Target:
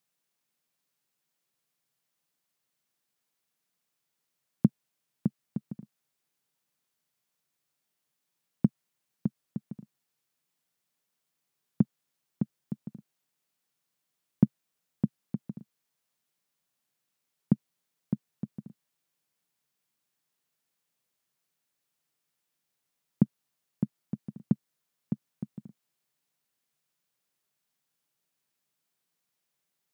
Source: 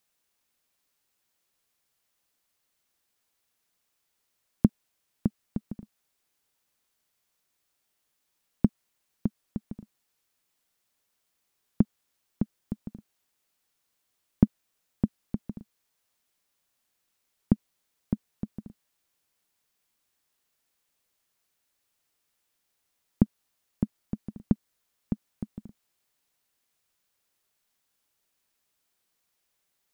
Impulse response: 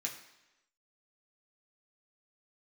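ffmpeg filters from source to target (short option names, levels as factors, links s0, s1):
-af "lowshelf=f=100:t=q:w=3:g=-11,volume=0.562"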